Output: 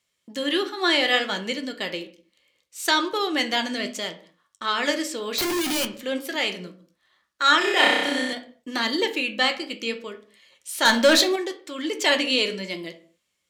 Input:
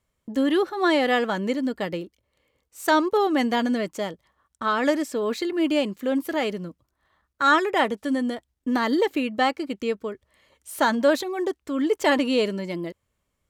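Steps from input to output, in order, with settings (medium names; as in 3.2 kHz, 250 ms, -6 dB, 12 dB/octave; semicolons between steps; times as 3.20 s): frequency weighting D; 5.38–5.85 s: Schmitt trigger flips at -34.5 dBFS; flange 0.68 Hz, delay 8.3 ms, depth 8.6 ms, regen +63%; 10.85–11.36 s: waveshaping leveller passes 2; tone controls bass -2 dB, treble +5 dB; 7.58–8.33 s: flutter echo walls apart 5.4 m, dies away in 1.2 s; reverberation, pre-delay 6 ms, DRR 8 dB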